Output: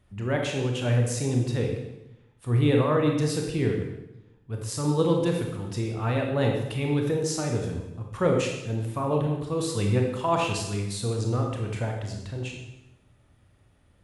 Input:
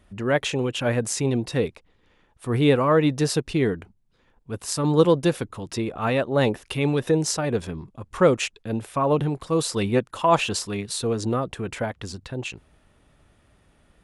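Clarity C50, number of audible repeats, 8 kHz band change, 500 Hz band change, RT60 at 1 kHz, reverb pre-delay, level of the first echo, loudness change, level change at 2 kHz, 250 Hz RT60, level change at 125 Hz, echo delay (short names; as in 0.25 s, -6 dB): 3.5 dB, none, -5.0 dB, -4.0 dB, 0.85 s, 24 ms, none, -3.0 dB, -5.0 dB, 1.1 s, +1.5 dB, none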